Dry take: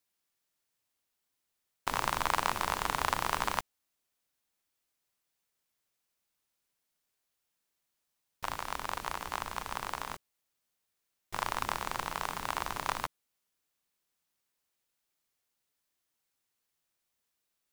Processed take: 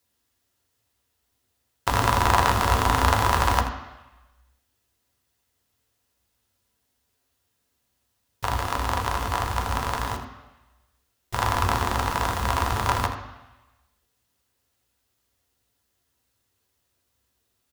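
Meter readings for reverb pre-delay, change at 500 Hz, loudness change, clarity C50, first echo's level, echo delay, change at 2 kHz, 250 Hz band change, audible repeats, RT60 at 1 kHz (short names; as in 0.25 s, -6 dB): 3 ms, +12.5 dB, +10.5 dB, 7.5 dB, -12.0 dB, 81 ms, +9.0 dB, +14.5 dB, 1, 1.1 s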